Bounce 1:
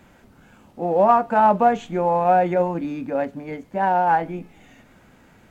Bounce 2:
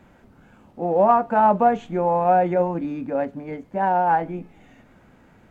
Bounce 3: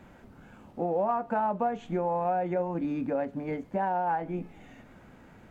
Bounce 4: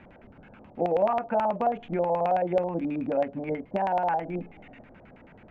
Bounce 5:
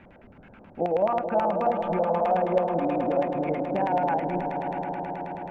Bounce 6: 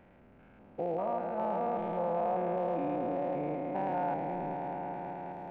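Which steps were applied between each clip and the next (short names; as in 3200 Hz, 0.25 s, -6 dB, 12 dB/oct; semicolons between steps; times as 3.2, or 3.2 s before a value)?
high shelf 2600 Hz -9 dB
compressor 4:1, threshold -27 dBFS, peak gain reduction 13 dB
LFO low-pass square 9.3 Hz 650–2500 Hz
swelling echo 0.107 s, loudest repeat 5, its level -11 dB
stepped spectrum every 0.2 s; gain -6 dB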